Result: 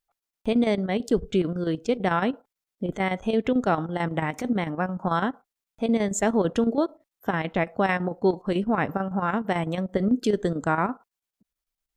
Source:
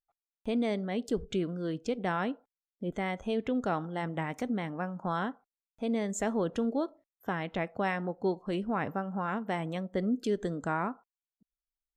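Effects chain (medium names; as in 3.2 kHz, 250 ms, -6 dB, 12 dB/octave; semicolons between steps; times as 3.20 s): square tremolo 9 Hz, depth 60%, duty 75%; trim +8.5 dB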